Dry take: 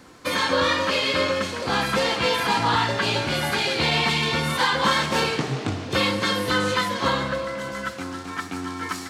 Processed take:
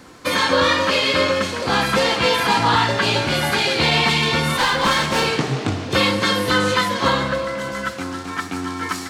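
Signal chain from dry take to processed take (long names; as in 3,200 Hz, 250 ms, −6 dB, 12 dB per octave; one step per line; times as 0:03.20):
0:04.56–0:05.26: asymmetric clip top −22 dBFS
level +4.5 dB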